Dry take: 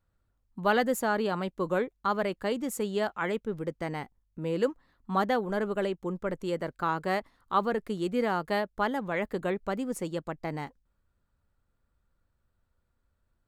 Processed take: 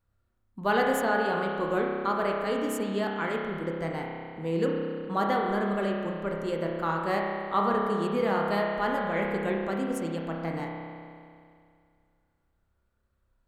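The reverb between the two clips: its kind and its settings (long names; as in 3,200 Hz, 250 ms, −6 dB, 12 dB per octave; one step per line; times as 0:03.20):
spring reverb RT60 2.3 s, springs 30 ms, chirp 40 ms, DRR −1 dB
level −1.5 dB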